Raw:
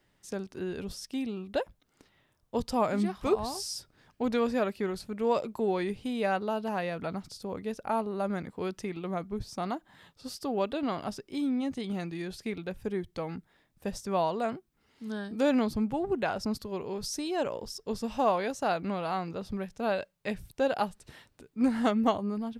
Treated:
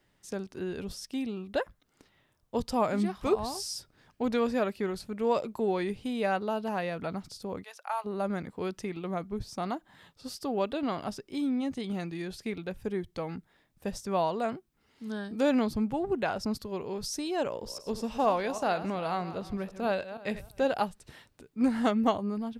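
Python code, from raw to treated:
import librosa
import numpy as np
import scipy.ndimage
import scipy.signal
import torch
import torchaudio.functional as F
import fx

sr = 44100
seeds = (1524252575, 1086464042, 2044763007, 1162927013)

y = fx.spec_box(x, sr, start_s=1.58, length_s=0.22, low_hz=1000.0, high_hz=2100.0, gain_db=7)
y = fx.highpass(y, sr, hz=790.0, slope=24, at=(7.62, 8.04), fade=0.02)
y = fx.reverse_delay_fb(y, sr, ms=159, feedback_pct=40, wet_db=-12.5, at=(17.47, 20.84))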